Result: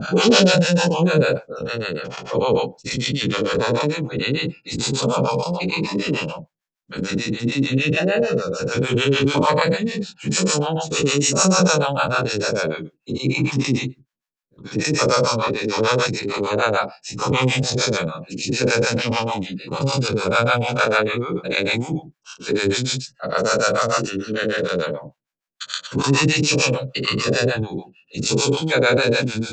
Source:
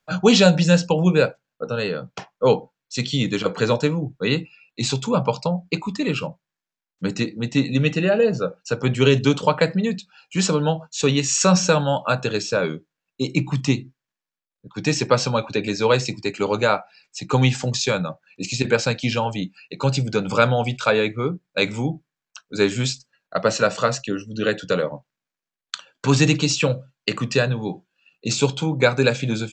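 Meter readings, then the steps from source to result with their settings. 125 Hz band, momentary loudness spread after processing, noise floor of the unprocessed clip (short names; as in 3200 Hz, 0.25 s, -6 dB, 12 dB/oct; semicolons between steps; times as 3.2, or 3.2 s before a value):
-0.5 dB, 10 LU, under -85 dBFS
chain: spectral dilation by 0.24 s; harmonic tremolo 6.7 Hz, depth 100%, crossover 560 Hz; gain -1.5 dB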